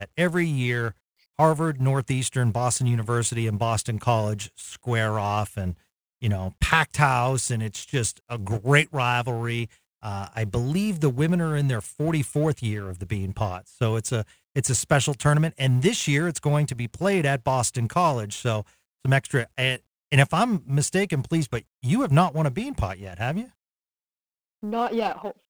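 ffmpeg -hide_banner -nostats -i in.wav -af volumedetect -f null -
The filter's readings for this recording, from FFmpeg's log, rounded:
mean_volume: -24.5 dB
max_volume: -2.3 dB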